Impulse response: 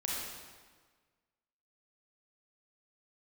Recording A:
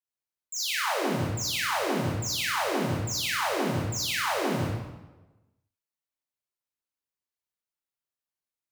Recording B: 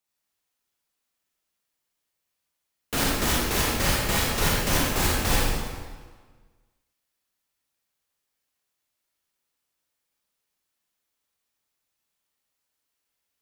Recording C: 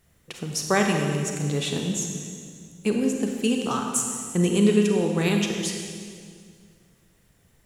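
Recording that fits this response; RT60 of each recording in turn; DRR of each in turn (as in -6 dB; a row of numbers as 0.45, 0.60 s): B; 1.1, 1.5, 2.1 s; -6.0, -4.5, 2.0 dB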